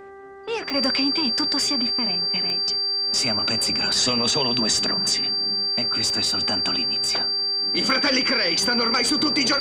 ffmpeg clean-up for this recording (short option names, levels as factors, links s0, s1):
-af "adeclick=t=4,bandreject=f=392.9:t=h:w=4,bandreject=f=785.8:t=h:w=4,bandreject=f=1178.7:t=h:w=4,bandreject=f=1571.6:t=h:w=4,bandreject=f=1964.5:t=h:w=4,bandreject=f=4700:w=30"